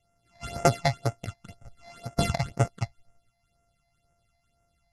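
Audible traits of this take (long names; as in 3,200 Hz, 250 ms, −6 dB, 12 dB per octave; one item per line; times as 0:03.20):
a buzz of ramps at a fixed pitch in blocks of 64 samples
phaser sweep stages 8, 2 Hz, lowest notch 380–4,000 Hz
MP2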